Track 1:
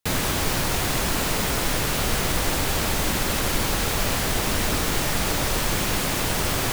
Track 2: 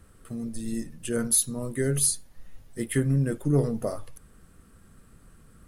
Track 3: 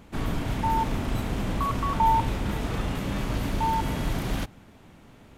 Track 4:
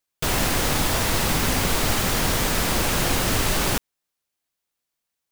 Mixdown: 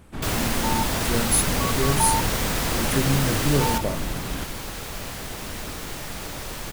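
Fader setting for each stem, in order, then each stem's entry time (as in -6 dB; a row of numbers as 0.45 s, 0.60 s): -10.0 dB, +0.5 dB, -2.5 dB, -3.5 dB; 0.95 s, 0.00 s, 0.00 s, 0.00 s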